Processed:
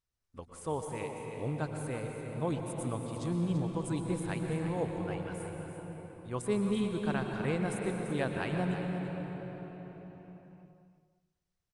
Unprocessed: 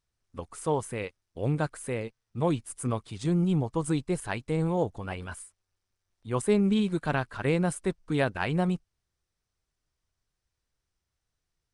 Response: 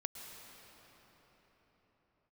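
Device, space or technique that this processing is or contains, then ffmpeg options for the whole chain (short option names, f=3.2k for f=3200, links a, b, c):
cave: -filter_complex "[0:a]aecho=1:1:338:0.299[a];[1:a]atrim=start_sample=2205[b];[a][b]afir=irnorm=-1:irlink=0,aecho=1:1:195|390|585|780:0.0794|0.0437|0.024|0.0132,volume=-4.5dB"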